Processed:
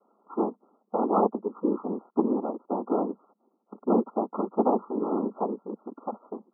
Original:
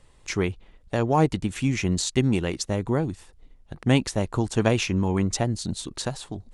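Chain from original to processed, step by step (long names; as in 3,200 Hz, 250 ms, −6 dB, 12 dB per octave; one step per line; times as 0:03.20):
cochlear-implant simulation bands 6
linear-phase brick-wall band-pass 200–1,400 Hz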